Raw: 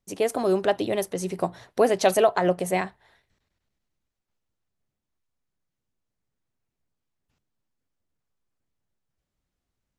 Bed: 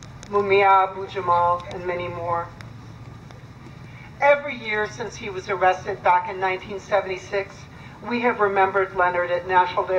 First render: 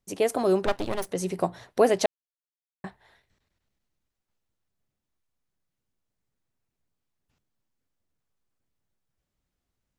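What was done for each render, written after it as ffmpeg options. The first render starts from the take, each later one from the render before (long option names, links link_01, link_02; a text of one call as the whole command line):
ffmpeg -i in.wav -filter_complex "[0:a]asettb=1/sr,asplit=3[link_01][link_02][link_03];[link_01]atrim=end=0.664[link_04];[link_02]atrim=start=0.66:end=1.09,asetpts=PTS-STARTPTS,afade=type=in:duration=0.004:curve=qsin,afade=type=out:start_time=0.426:duration=0.004:curve=qsin,aeval=exprs='max(val(0),0)':channel_layout=same[link_05];[link_03]atrim=start=1.086[link_06];[link_04][link_05]acrossfade=duration=0.004:curve1=hsin:curve2=qsin[link_07];[link_07][link_06]acrossfade=duration=0.004:curve1=qsin:curve2=hsin,asplit=3[link_08][link_09][link_10];[link_08]atrim=end=2.06,asetpts=PTS-STARTPTS,afade=type=out:start_time=2.056:duration=0.004:curve=hsin[link_11];[link_09]atrim=start=2.06:end=2.84,asetpts=PTS-STARTPTS,volume=0[link_12];[link_10]atrim=start=2.84,asetpts=PTS-STARTPTS,afade=type=in:duration=0.004:curve=hsin[link_13];[link_11][link_12][link_13]concat=n=3:v=0:a=1" out.wav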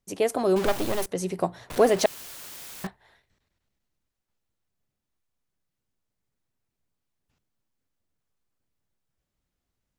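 ffmpeg -i in.wav -filter_complex "[0:a]asettb=1/sr,asplit=3[link_01][link_02][link_03];[link_01]atrim=end=0.564[link_04];[link_02]atrim=start=0.56:end=1.06,asetpts=PTS-STARTPTS,afade=type=in:duration=0.004:curve=qsin,afade=type=out:start_time=0.496:duration=0.004:curve=qsin,aeval=exprs='val(0)+0.5*0.0501*sgn(val(0))':channel_layout=same[link_05];[link_03]atrim=start=1.056[link_06];[link_04][link_05]acrossfade=duration=0.004:curve1=hsin:curve2=qsin[link_07];[link_07][link_06]acrossfade=duration=0.004:curve1=qsin:curve2=hsin,asettb=1/sr,asplit=3[link_08][link_09][link_10];[link_08]atrim=end=1.704[link_11];[link_09]atrim=start=1.7:end=2.87,asetpts=PTS-STARTPTS,afade=type=in:duration=0.004:curve=qsin,afade=type=out:start_time=1.166:duration=0.004:curve=qsin,aeval=exprs='val(0)+0.5*0.0316*sgn(val(0))':channel_layout=same[link_12];[link_10]atrim=start=2.866[link_13];[link_11][link_12]acrossfade=duration=0.004:curve1=hsin:curve2=qsin[link_14];[link_14][link_13]acrossfade=duration=0.004:curve1=qsin:curve2=hsin" out.wav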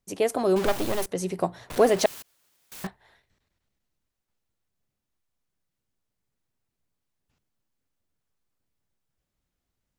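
ffmpeg -i in.wav -filter_complex "[0:a]asettb=1/sr,asplit=3[link_01][link_02][link_03];[link_01]atrim=end=2.224[link_04];[link_02]atrim=start=2.22:end=2.72,asetpts=PTS-STARTPTS,afade=type=in:duration=0.004:curve=qsin,afade=type=out:start_time=0.496:duration=0.004:curve=qsin,agate=range=-33dB:threshold=-27dB:ratio=3:release=100:detection=peak[link_05];[link_03]atrim=start=2.716[link_06];[link_04][link_05]acrossfade=duration=0.004:curve1=hsin:curve2=qsin[link_07];[link_07][link_06]acrossfade=duration=0.004:curve1=qsin:curve2=hsin" out.wav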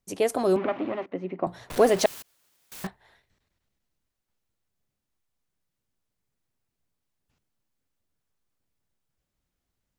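ffmpeg -i in.wav -filter_complex "[0:a]asettb=1/sr,asplit=3[link_01][link_02][link_03];[link_01]atrim=end=0.564[link_04];[link_02]atrim=start=0.56:end=1.47,asetpts=PTS-STARTPTS,afade=type=in:duration=0.004:curve=qsin,afade=type=out:start_time=0.906:duration=0.004:curve=qsin,highpass=250,equalizer=frequency=270:width_type=q:width=4:gain=8,equalizer=frequency=440:width_type=q:width=4:gain=-7,equalizer=frequency=870:width_type=q:width=4:gain=-4,equalizer=frequency=1600:width_type=q:width=4:gain=-7,lowpass=frequency=2300:width=0.5412,lowpass=frequency=2300:width=1.3066[link_05];[link_03]atrim=start=1.466[link_06];[link_04][link_05]acrossfade=duration=0.004:curve1=hsin:curve2=qsin[link_07];[link_07][link_06]acrossfade=duration=0.004:curve1=qsin:curve2=hsin" out.wav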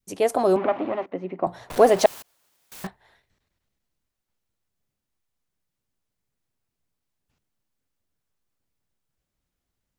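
ffmpeg -i in.wav -af "adynamicequalizer=threshold=0.0178:dfrequency=770:dqfactor=1:tfrequency=770:tqfactor=1:attack=5:release=100:ratio=0.375:range=3.5:mode=boostabove:tftype=bell" out.wav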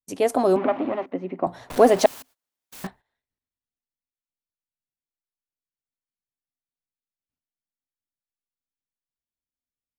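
ffmpeg -i in.wav -af "agate=range=-22dB:threshold=-47dB:ratio=16:detection=peak,equalizer=frequency=260:width=7.2:gain=9.5" out.wav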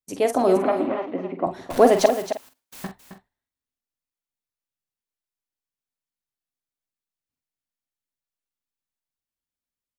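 ffmpeg -i in.wav -filter_complex "[0:a]asplit=2[link_01][link_02];[link_02]adelay=46,volume=-9dB[link_03];[link_01][link_03]amix=inputs=2:normalize=0,asplit=2[link_04][link_05];[link_05]aecho=0:1:267:0.299[link_06];[link_04][link_06]amix=inputs=2:normalize=0" out.wav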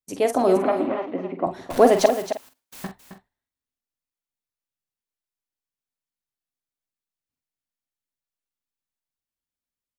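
ffmpeg -i in.wav -af anull out.wav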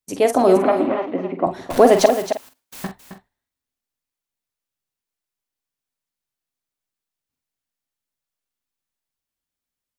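ffmpeg -i in.wav -af "volume=4.5dB,alimiter=limit=-1dB:level=0:latency=1" out.wav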